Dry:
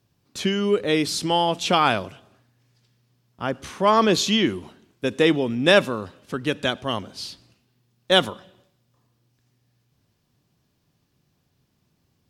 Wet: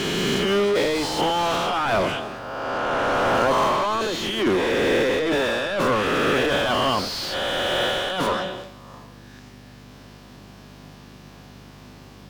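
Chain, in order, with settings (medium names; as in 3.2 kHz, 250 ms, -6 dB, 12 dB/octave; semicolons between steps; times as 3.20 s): reverse spectral sustain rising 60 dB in 1.62 s; treble shelf 2.6 kHz +5 dB; compressor with a negative ratio -21 dBFS, ratio -0.5; hum 50 Hz, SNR 30 dB; overdrive pedal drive 31 dB, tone 1 kHz, clips at -12 dBFS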